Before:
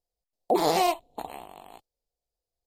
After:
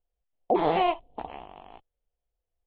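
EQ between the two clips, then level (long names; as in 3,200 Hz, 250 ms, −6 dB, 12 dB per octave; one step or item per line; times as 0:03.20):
elliptic low-pass filter 3,200 Hz, stop band 50 dB
low-shelf EQ 78 Hz +11 dB
0.0 dB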